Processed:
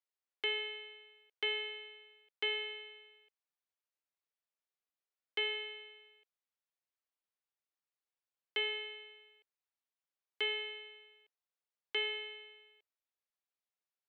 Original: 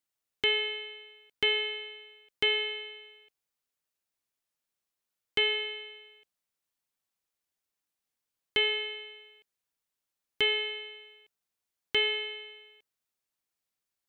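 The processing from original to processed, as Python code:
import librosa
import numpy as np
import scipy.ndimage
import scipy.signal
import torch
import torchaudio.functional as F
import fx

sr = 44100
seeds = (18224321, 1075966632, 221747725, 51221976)

y = scipy.signal.sosfilt(scipy.signal.butter(4, 390.0, 'highpass', fs=sr, output='sos'), x)
y = fx.air_absorb(y, sr, metres=130.0)
y = y * 10.0 ** (-6.5 / 20.0)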